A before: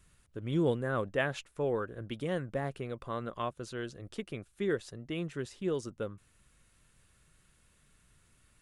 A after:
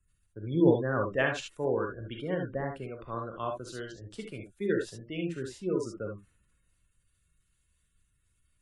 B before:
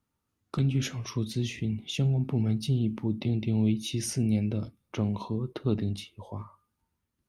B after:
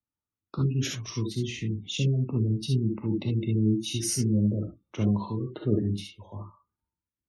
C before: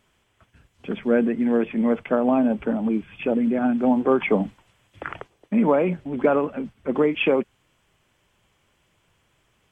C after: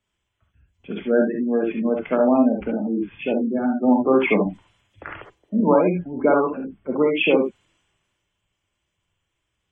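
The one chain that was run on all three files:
spectral gate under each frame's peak -25 dB strong; gated-style reverb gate 90 ms rising, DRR 1.5 dB; three bands expanded up and down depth 40%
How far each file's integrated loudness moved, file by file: +4.0 LU, +1.5 LU, +1.5 LU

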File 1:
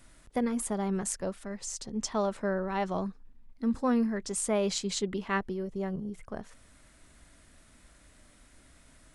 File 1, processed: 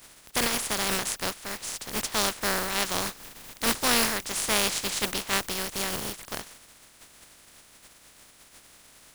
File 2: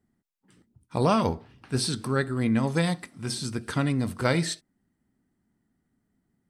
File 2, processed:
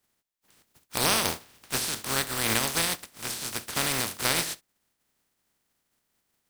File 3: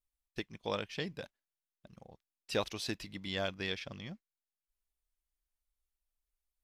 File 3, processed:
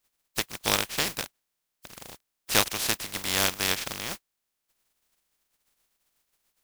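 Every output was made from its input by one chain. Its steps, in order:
spectral contrast reduction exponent 0.23; normalise loudness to -27 LUFS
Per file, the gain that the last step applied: +3.5 dB, -2.0 dB, +10.5 dB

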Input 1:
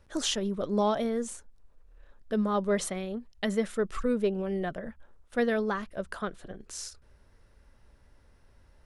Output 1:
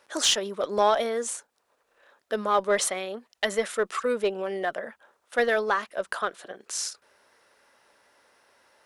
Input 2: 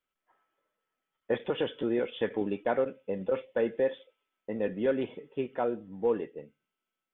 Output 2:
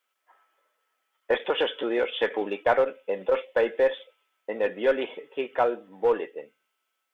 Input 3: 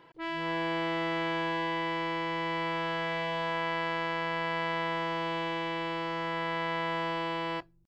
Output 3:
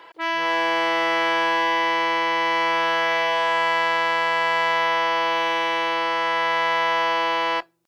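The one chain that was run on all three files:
high-pass 570 Hz 12 dB/octave; in parallel at -4.5 dB: one-sided clip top -30.5 dBFS; on the sum: peak normalisation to -9 dBFS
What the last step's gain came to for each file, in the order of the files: +5.0 dB, +6.0 dB, +9.0 dB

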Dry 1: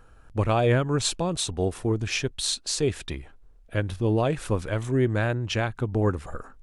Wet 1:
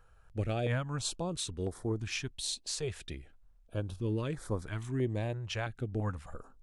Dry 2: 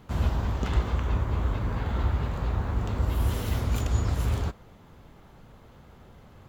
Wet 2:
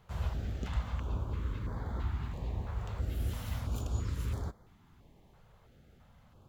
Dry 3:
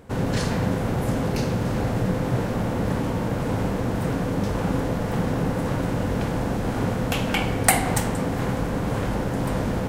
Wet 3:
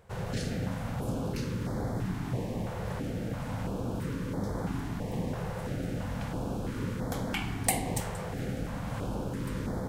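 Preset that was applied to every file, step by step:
step-sequenced notch 3 Hz 270–2700 Hz; trim -8.5 dB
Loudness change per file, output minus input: -10.0 LU, -9.0 LU, -9.5 LU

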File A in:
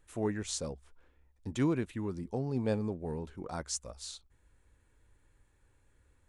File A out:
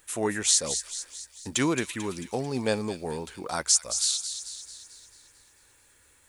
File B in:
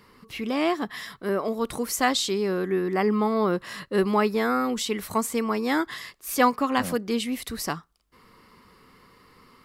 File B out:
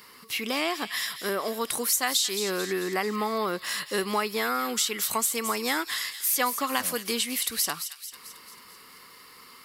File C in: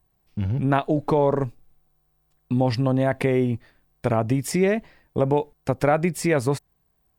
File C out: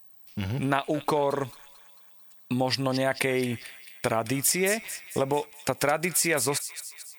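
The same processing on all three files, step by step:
tilt EQ +3.5 dB/octave; compression 2.5:1, threshold -29 dBFS; on a send: feedback echo behind a high-pass 221 ms, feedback 54%, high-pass 2.6 kHz, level -8.5 dB; on the sum: normalise loudness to -27 LUFS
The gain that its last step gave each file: +10.0 dB, +3.0 dB, +5.0 dB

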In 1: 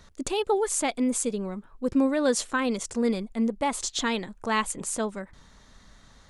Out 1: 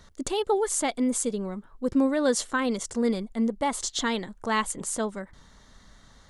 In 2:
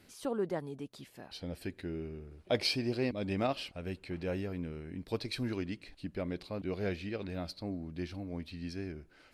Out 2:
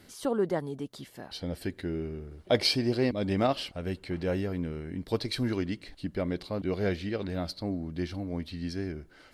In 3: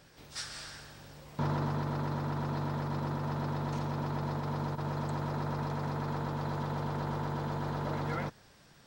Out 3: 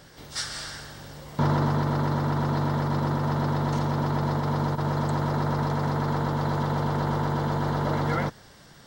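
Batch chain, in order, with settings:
band-stop 2.5 kHz, Q 8.2; peak normalisation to -12 dBFS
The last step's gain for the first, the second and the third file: 0.0 dB, +6.0 dB, +8.5 dB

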